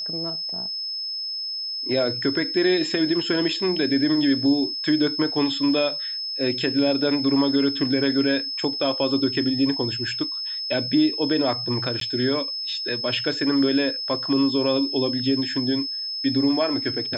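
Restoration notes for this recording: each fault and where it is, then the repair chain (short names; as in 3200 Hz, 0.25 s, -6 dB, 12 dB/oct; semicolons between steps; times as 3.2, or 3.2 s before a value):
tone 5200 Hz -27 dBFS
12–12.01 gap 13 ms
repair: notch 5200 Hz, Q 30; interpolate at 12, 13 ms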